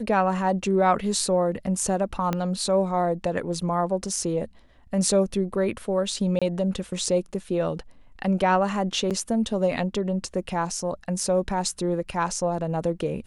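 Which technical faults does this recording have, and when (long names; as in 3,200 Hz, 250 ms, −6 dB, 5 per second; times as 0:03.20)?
0:02.33: click −12 dBFS
0:06.39–0:06.42: drop-out 26 ms
0:09.10–0:09.11: drop-out 7.6 ms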